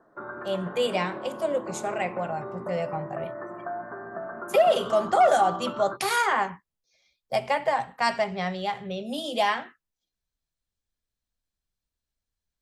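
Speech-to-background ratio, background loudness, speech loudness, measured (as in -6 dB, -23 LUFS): 10.0 dB, -36.5 LUFS, -26.5 LUFS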